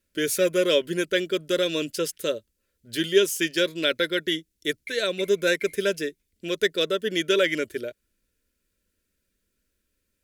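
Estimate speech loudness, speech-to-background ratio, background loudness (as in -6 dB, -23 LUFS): -25.0 LUFS, 18.0 dB, -43.0 LUFS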